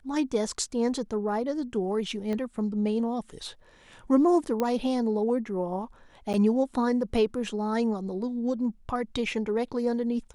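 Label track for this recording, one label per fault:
2.330000	2.330000	pop -21 dBFS
4.600000	4.600000	pop -15 dBFS
6.330000	6.340000	dropout 8.8 ms

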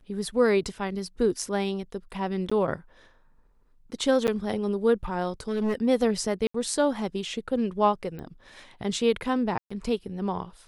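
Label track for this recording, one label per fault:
2.500000	2.520000	dropout 15 ms
4.270000	4.280000	dropout 8.8 ms
5.400000	5.750000	clipped -22.5 dBFS
6.470000	6.540000	dropout 74 ms
8.190000	8.190000	pop -28 dBFS
9.580000	9.710000	dropout 125 ms

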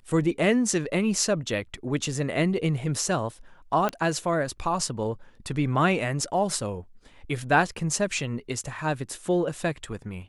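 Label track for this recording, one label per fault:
3.890000	3.890000	pop -13 dBFS

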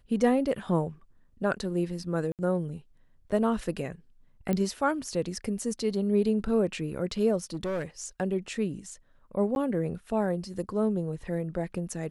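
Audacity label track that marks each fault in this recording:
2.320000	2.390000	dropout 68 ms
4.530000	4.530000	pop -16 dBFS
7.540000	7.850000	clipped -27.5 dBFS
9.550000	9.560000	dropout 11 ms

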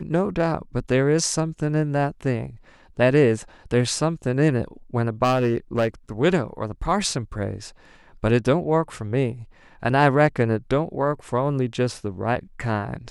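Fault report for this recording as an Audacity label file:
5.230000	5.880000	clipped -15 dBFS

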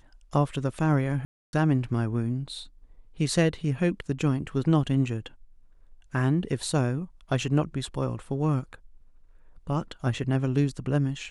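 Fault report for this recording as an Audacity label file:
1.250000	1.530000	dropout 281 ms

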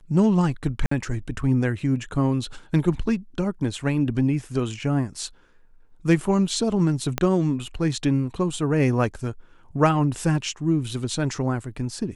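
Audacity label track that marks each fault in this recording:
0.860000	0.910000	dropout 54 ms
7.180000	7.180000	pop -8 dBFS

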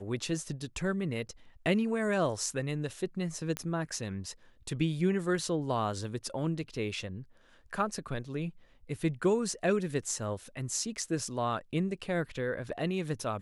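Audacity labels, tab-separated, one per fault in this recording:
3.570000	3.570000	pop -17 dBFS

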